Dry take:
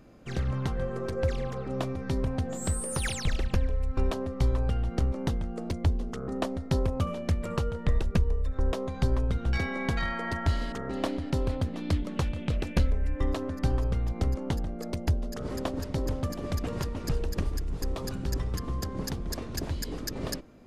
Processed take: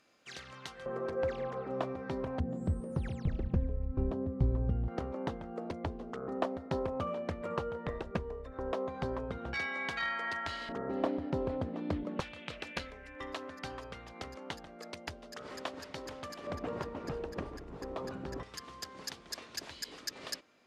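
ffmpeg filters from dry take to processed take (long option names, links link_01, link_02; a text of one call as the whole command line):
ffmpeg -i in.wav -af "asetnsamples=nb_out_samples=441:pad=0,asendcmd='0.86 bandpass f 840;2.4 bandpass f 170;4.88 bandpass f 820;9.54 bandpass f 2300;10.69 bandpass f 550;12.2 bandpass f 2300;16.47 bandpass f 790;18.43 bandpass f 3300',bandpass=frequency=4400:width_type=q:width=0.61:csg=0" out.wav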